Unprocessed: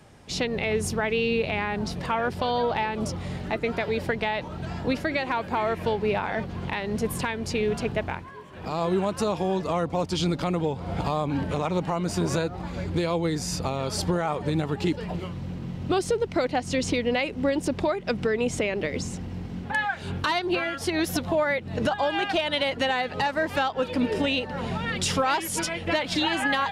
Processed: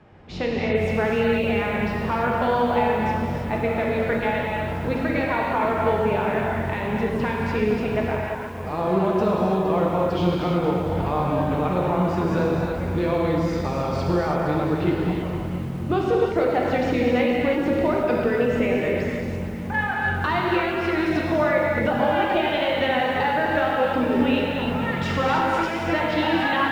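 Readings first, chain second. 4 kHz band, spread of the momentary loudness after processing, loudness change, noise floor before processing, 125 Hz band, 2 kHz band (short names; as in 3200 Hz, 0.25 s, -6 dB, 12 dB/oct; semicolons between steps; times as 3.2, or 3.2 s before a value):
-2.5 dB, 5 LU, +4.0 dB, -38 dBFS, +4.0 dB, +3.0 dB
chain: LPF 2300 Hz 12 dB/oct; non-linear reverb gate 0.36 s flat, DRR -3 dB; lo-fi delay 0.464 s, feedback 35%, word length 7-bit, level -11.5 dB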